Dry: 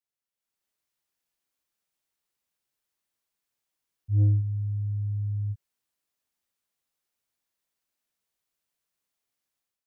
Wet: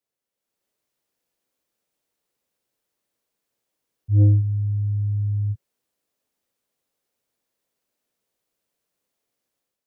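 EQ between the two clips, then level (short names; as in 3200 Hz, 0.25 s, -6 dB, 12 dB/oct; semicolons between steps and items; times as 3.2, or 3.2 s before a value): graphic EQ 125/250/500 Hz +3/+5/+9 dB; +3.0 dB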